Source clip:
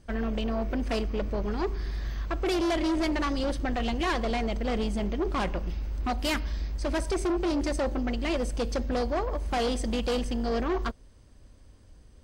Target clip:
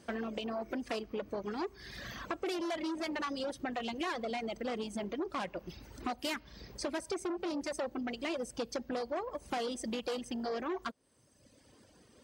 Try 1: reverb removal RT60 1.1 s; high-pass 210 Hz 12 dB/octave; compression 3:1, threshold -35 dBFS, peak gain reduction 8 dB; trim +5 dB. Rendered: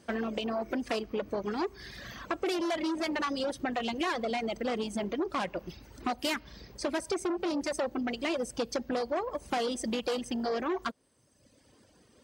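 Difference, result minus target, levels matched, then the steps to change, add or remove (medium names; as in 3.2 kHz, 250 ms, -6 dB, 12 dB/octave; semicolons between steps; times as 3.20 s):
compression: peak gain reduction -5 dB
change: compression 3:1, threshold -42.5 dBFS, peak gain reduction 13 dB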